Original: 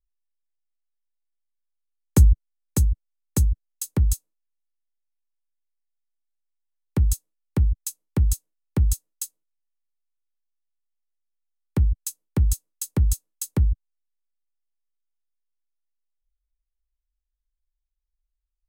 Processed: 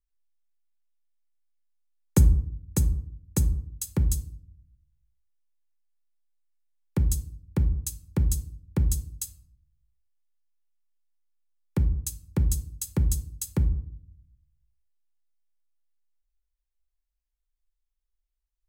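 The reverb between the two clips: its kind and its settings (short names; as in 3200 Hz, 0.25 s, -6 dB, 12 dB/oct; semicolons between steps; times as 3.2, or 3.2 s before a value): shoebox room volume 1000 m³, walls furnished, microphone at 0.83 m; gain -3 dB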